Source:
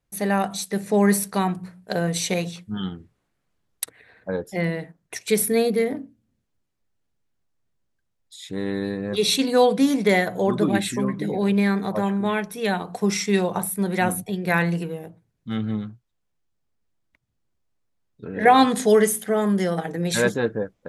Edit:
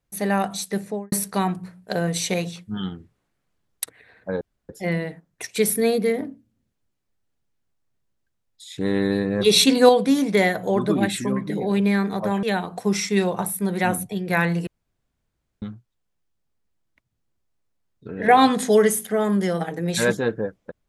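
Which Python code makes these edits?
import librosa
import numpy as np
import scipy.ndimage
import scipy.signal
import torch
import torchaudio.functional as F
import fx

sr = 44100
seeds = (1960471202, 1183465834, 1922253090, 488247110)

y = fx.studio_fade_out(x, sr, start_s=0.73, length_s=0.39)
y = fx.edit(y, sr, fx.insert_room_tone(at_s=4.41, length_s=0.28),
    fx.clip_gain(start_s=8.5, length_s=1.11, db=5.0),
    fx.cut(start_s=12.15, length_s=0.45),
    fx.room_tone_fill(start_s=14.84, length_s=0.95), tone=tone)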